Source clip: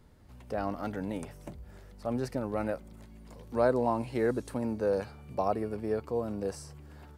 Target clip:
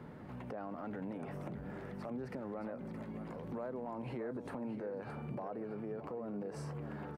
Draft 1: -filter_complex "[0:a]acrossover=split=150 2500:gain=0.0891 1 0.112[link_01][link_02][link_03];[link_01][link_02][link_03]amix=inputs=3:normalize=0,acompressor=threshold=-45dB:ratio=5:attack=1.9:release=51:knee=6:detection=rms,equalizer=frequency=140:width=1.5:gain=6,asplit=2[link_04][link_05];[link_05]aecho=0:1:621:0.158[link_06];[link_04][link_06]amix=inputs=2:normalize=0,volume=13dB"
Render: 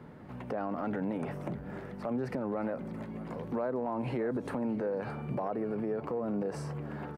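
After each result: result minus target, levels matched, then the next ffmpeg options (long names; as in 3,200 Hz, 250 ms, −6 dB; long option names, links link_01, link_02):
downward compressor: peak gain reduction −9 dB; echo-to-direct −6.5 dB
-filter_complex "[0:a]acrossover=split=150 2500:gain=0.0891 1 0.112[link_01][link_02][link_03];[link_01][link_02][link_03]amix=inputs=3:normalize=0,acompressor=threshold=-56dB:ratio=5:attack=1.9:release=51:knee=6:detection=rms,equalizer=frequency=140:width=1.5:gain=6,asplit=2[link_04][link_05];[link_05]aecho=0:1:621:0.158[link_06];[link_04][link_06]amix=inputs=2:normalize=0,volume=13dB"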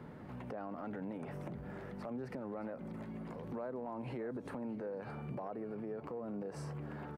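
echo-to-direct −6.5 dB
-filter_complex "[0:a]acrossover=split=150 2500:gain=0.0891 1 0.112[link_01][link_02][link_03];[link_01][link_02][link_03]amix=inputs=3:normalize=0,acompressor=threshold=-56dB:ratio=5:attack=1.9:release=51:knee=6:detection=rms,equalizer=frequency=140:width=1.5:gain=6,asplit=2[link_04][link_05];[link_05]aecho=0:1:621:0.335[link_06];[link_04][link_06]amix=inputs=2:normalize=0,volume=13dB"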